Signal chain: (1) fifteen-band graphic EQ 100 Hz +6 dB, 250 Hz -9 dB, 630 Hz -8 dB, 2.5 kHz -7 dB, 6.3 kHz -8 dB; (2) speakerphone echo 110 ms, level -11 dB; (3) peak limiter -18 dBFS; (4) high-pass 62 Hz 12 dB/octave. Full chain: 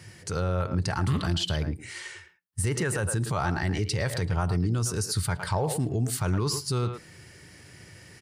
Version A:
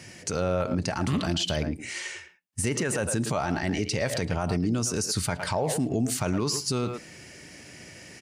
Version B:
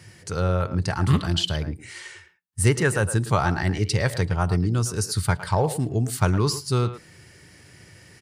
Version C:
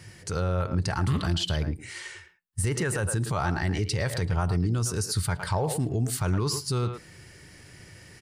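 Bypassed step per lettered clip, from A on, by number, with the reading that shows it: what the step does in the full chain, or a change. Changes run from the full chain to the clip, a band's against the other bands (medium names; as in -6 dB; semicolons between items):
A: 1, momentary loudness spread change +10 LU; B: 3, mean gain reduction 2.0 dB; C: 4, crest factor change -4.5 dB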